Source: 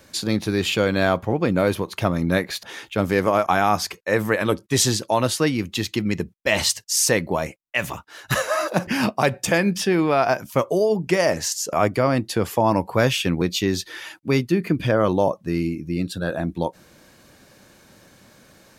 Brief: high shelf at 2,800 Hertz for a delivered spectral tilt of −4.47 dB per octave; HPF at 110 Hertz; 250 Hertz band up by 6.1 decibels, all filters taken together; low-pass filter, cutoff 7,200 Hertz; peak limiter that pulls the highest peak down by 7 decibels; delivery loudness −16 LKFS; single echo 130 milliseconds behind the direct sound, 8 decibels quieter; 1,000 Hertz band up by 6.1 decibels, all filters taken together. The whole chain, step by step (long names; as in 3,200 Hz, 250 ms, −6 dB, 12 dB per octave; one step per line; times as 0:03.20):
high-pass filter 110 Hz
low-pass filter 7,200 Hz
parametric band 250 Hz +8 dB
parametric band 1,000 Hz +7 dB
high-shelf EQ 2,800 Hz +4.5 dB
brickwall limiter −6 dBFS
single-tap delay 130 ms −8 dB
level +2.5 dB